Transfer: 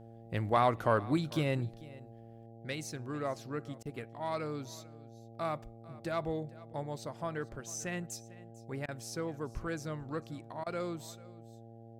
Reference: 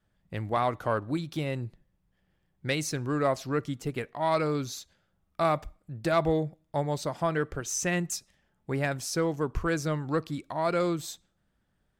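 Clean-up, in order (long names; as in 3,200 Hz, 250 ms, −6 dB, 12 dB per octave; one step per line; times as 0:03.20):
hum removal 114.5 Hz, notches 7
repair the gap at 0:03.83/0:08.86/0:10.64, 23 ms
echo removal 446 ms −20 dB
level correction +10 dB, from 0:02.46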